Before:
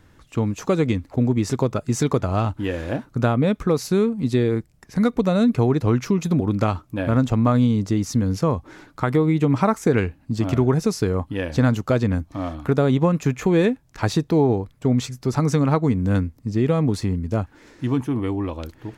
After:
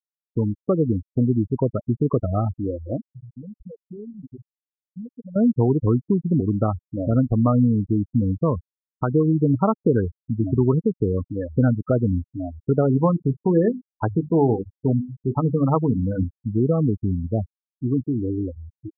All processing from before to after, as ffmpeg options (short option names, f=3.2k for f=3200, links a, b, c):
-filter_complex "[0:a]asettb=1/sr,asplit=3[a][b][c];[a]atrim=end=3.074[d];[b]atrim=start=3.07:end=5.36,asetpts=PTS-STARTPTS,afade=t=in:d=0.004:c=qsin,afade=t=out:st=2.286:d=0.004:c=qsin,equalizer=f=2k:w=0.64:g=-6,acompressor=threshold=-36dB:ratio=3:attack=3.2:release=140:knee=1:detection=peak[e];[c]atrim=start=5.356[f];[d][e]acrossfade=d=0.004:c1=hsin:c2=qsin[g];[g][f]acrossfade=d=0.004:c1=qsin:c2=hsin,asettb=1/sr,asplit=3[h][i][j];[h]atrim=end=12.824[k];[i]atrim=start=12.82:end=16.24,asetpts=PTS-STARTPTS,afade=t=in:d=0.004:c=qsin,afade=t=out:st=3.416:d=0.004:c=qsin,equalizer=f=980:t=o:w=0.73:g=3.5,bandreject=f=50:t=h:w=6,bandreject=f=100:t=h:w=6,bandreject=f=150:t=h:w=6,bandreject=f=200:t=h:w=6,bandreject=f=250:t=h:w=6,bandreject=f=300:t=h:w=6,bandreject=f=350:t=h:w=6,bandreject=f=400:t=h:w=6[l];[j]atrim=start=16.236[m];[k][l]acrossfade=d=0.004:c1=hsin:c2=qsin[n];[n][m]acrossfade=d=0.004:c1=qsin:c2=hsin,aemphasis=mode=reproduction:type=50kf,afftfilt=real='re*gte(hypot(re,im),0.178)':imag='im*gte(hypot(re,im),0.178)':win_size=1024:overlap=0.75,equalizer=f=2.6k:t=o:w=1:g=-9"